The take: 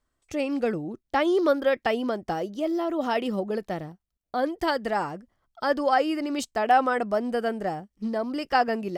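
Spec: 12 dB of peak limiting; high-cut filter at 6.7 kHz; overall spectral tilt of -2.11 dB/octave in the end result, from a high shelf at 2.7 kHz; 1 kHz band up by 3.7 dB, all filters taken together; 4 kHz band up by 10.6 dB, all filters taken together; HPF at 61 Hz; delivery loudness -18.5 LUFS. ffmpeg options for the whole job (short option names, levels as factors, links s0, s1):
-af "highpass=61,lowpass=6700,equalizer=f=1000:t=o:g=4,highshelf=f=2700:g=8,equalizer=f=4000:t=o:g=8,volume=2.66,alimiter=limit=0.447:level=0:latency=1"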